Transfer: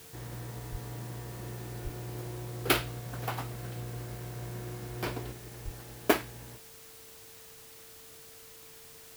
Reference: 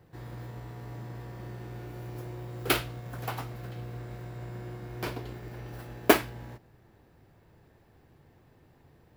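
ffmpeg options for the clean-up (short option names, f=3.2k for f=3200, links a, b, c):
-filter_complex "[0:a]bandreject=f=450:w=30,asplit=3[a][b][c];[a]afade=t=out:st=0.71:d=0.02[d];[b]highpass=f=140:w=0.5412,highpass=f=140:w=1.3066,afade=t=in:st=0.71:d=0.02,afade=t=out:st=0.83:d=0.02[e];[c]afade=t=in:st=0.83:d=0.02[f];[d][e][f]amix=inputs=3:normalize=0,asplit=3[g][h][i];[g]afade=t=out:st=1.83:d=0.02[j];[h]highpass=f=140:w=0.5412,highpass=f=140:w=1.3066,afade=t=in:st=1.83:d=0.02,afade=t=out:st=1.95:d=0.02[k];[i]afade=t=in:st=1.95:d=0.02[l];[j][k][l]amix=inputs=3:normalize=0,asplit=3[m][n][o];[m]afade=t=out:st=5.64:d=0.02[p];[n]highpass=f=140:w=0.5412,highpass=f=140:w=1.3066,afade=t=in:st=5.64:d=0.02,afade=t=out:st=5.76:d=0.02[q];[o]afade=t=in:st=5.76:d=0.02[r];[p][q][r]amix=inputs=3:normalize=0,afwtdn=0.0025,asetnsamples=n=441:p=0,asendcmd='5.32 volume volume 5dB',volume=0dB"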